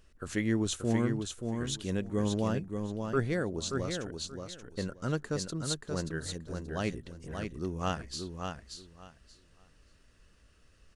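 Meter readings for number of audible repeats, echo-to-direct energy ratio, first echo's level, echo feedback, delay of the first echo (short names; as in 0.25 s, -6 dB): 3, -5.5 dB, -5.5 dB, 19%, 0.58 s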